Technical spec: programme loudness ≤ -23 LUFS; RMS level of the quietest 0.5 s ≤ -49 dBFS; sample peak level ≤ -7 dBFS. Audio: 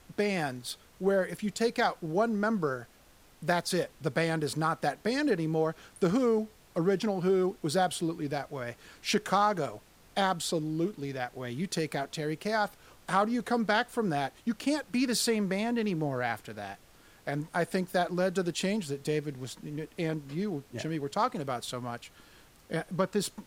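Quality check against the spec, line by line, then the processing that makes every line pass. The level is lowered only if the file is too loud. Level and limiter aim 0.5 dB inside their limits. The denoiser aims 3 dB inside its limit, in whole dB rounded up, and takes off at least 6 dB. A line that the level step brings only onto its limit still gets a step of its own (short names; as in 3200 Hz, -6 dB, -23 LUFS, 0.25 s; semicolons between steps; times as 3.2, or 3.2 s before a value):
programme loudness -31.0 LUFS: OK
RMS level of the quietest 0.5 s -59 dBFS: OK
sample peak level -11.5 dBFS: OK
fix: none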